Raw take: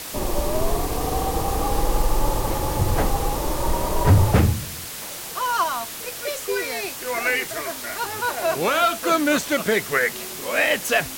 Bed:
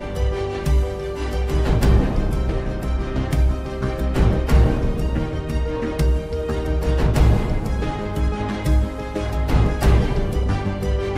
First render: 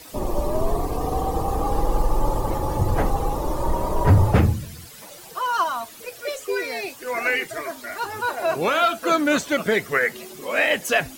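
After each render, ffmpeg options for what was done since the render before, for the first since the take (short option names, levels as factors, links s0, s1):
-af "afftdn=nr=13:nf=-34"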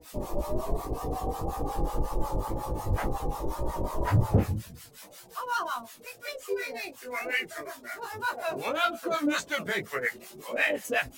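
-filter_complex "[0:a]acrossover=split=710[s0][s1];[s0]aeval=exprs='val(0)*(1-1/2+1/2*cos(2*PI*5.5*n/s))':c=same[s2];[s1]aeval=exprs='val(0)*(1-1/2-1/2*cos(2*PI*5.5*n/s))':c=same[s3];[s2][s3]amix=inputs=2:normalize=0,flanger=delay=16.5:depth=4.3:speed=1.9"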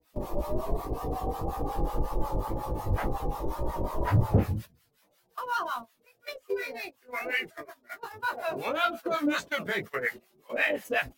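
-af "agate=range=0.141:threshold=0.0141:ratio=16:detection=peak,equalizer=f=7800:t=o:w=1.2:g=-7"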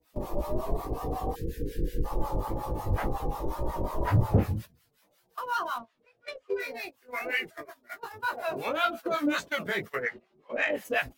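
-filter_complex "[0:a]asplit=3[s0][s1][s2];[s0]afade=t=out:st=1.34:d=0.02[s3];[s1]asuperstop=centerf=880:order=20:qfactor=0.84,afade=t=in:st=1.34:d=0.02,afade=t=out:st=2.04:d=0.02[s4];[s2]afade=t=in:st=2.04:d=0.02[s5];[s3][s4][s5]amix=inputs=3:normalize=0,asettb=1/sr,asplit=3[s6][s7][s8];[s6]atrim=end=5.784[s9];[s7]atrim=start=5.78:end=6.6,asetpts=PTS-STARTPTS,afade=t=in:d=0.004:c=qsin,afade=t=out:st=0.816:d=0.004:c=qsin,adynamicsmooth=sensitivity=8:basefreq=3800[s10];[s8]atrim=start=6.596[s11];[s9][s10]acrossfade=d=0.004:c1=hsin:c2=qsin[s12];[s12][s11]acrossfade=d=0.004:c1=qsin:c2=hsin,asplit=3[s13][s14][s15];[s13]afade=t=out:st=10.01:d=0.02[s16];[s14]adynamicsmooth=sensitivity=0.5:basefreq=3100,afade=t=in:st=10.01:d=0.02,afade=t=out:st=10.71:d=0.02[s17];[s15]afade=t=in:st=10.71:d=0.02[s18];[s16][s17][s18]amix=inputs=3:normalize=0"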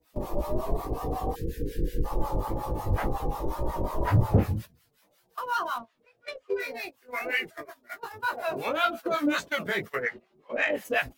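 -af "volume=1.19"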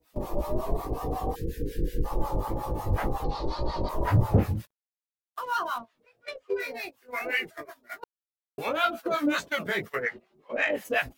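-filter_complex "[0:a]asettb=1/sr,asplit=3[s0][s1][s2];[s0]atrim=end=3.244[s3];[s1]atrim=start=3.24:end=3.89,asetpts=PTS-STARTPTS,afade=t=in:d=0.004:c=qsin,afade=t=out:st=0.646:d=0.004:c=qsin,lowpass=f=4400:t=q:w=9.5[s4];[s2]atrim=start=3.886[s5];[s3][s4]acrossfade=d=0.004:c1=hsin:c2=qsin[s6];[s6][s5]acrossfade=d=0.004:c1=qsin:c2=hsin,asettb=1/sr,asplit=3[s7][s8][s9];[s7]atrim=end=4.554[s10];[s8]atrim=start=4.55:end=5.57,asetpts=PTS-STARTPTS,afade=t=in:d=0.004:c=qsin,afade=t=out:st=1.016:d=0.004:c=qsin,aeval=exprs='sgn(val(0))*max(abs(val(0))-0.00211,0)':c=same[s11];[s9]atrim=start=5.566[s12];[s10][s11]acrossfade=d=0.004:c1=hsin:c2=qsin[s13];[s13][s12]acrossfade=d=0.004:c1=qsin:c2=hsin,asplit=3[s14][s15][s16];[s14]atrim=end=8.04,asetpts=PTS-STARTPTS,afade=t=out:st=8.036:d=0.004:c=hsin[s17];[s15]atrim=start=8.04:end=8.58,asetpts=PTS-STARTPTS,volume=0[s18];[s16]atrim=start=8.58,asetpts=PTS-STARTPTS,afade=t=in:d=0.004:c=hsin[s19];[s17][s18][s19]concat=n=3:v=0:a=1"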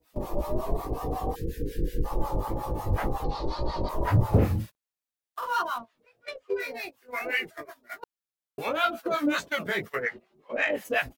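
-filter_complex "[0:a]asplit=3[s0][s1][s2];[s0]afade=t=out:st=4.32:d=0.02[s3];[s1]asplit=2[s4][s5];[s5]adelay=45,volume=0.75[s6];[s4][s6]amix=inputs=2:normalize=0,afade=t=in:st=4.32:d=0.02,afade=t=out:st=5.61:d=0.02[s7];[s2]afade=t=in:st=5.61:d=0.02[s8];[s3][s7][s8]amix=inputs=3:normalize=0"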